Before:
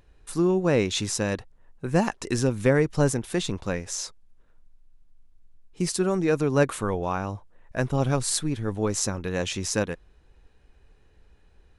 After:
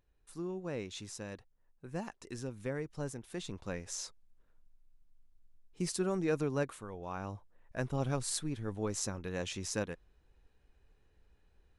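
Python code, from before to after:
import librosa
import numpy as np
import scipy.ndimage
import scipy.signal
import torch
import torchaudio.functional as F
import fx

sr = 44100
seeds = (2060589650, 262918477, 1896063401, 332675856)

y = fx.gain(x, sr, db=fx.line((3.12, -17.5), (3.92, -9.0), (6.43, -9.0), (6.88, -19.0), (7.26, -10.0)))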